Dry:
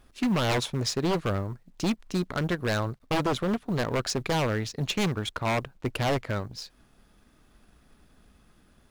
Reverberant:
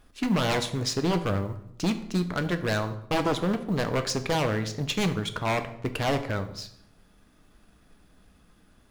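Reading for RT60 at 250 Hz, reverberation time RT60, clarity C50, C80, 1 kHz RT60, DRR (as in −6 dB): 0.85 s, 0.70 s, 12.5 dB, 15.0 dB, 0.70 s, 8.0 dB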